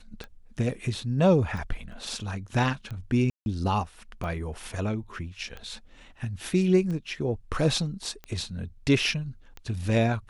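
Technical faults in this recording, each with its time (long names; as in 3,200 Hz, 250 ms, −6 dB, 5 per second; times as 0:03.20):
scratch tick 45 rpm −25 dBFS
0:01.92: drop-out 3.6 ms
0:03.30–0:03.46: drop-out 161 ms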